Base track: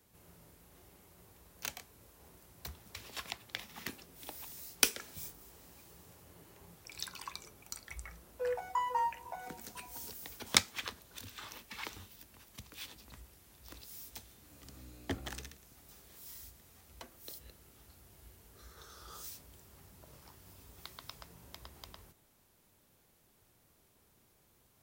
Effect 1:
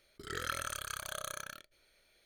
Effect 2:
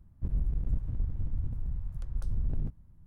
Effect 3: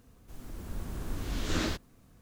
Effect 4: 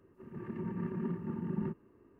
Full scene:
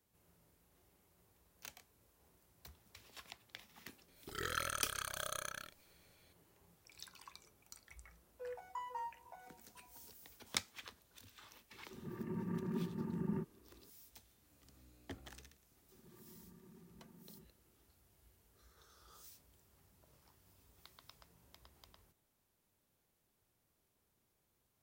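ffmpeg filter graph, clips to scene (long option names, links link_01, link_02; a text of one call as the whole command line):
ffmpeg -i bed.wav -i cue0.wav -i cue1.wav -i cue2.wav -i cue3.wav -filter_complex "[4:a]asplit=2[link_01][link_02];[0:a]volume=-11.5dB[link_03];[link_02]acompressor=threshold=-41dB:ratio=6:attack=3.2:release=140:knee=1:detection=peak[link_04];[1:a]atrim=end=2.25,asetpts=PTS-STARTPTS,volume=-1.5dB,afade=type=in:duration=0.004:curve=hsin,afade=type=out:start_time=2.246:duration=0.004:curve=hsin,adelay=4080[link_05];[link_01]atrim=end=2.19,asetpts=PTS-STARTPTS,volume=-3.5dB,afade=type=in:duration=0.004:curve=hsin,afade=type=out:start_time=2.186:duration=0.004:curve=hsin,adelay=11710[link_06];[link_04]atrim=end=2.19,asetpts=PTS-STARTPTS,volume=-16.5dB,afade=type=in:duration=0.004:curve=hsin,afade=type=out:start_time=2.186:duration=0.004:curve=hsin,adelay=693252S[link_07];[link_03][link_05][link_06][link_07]amix=inputs=4:normalize=0" out.wav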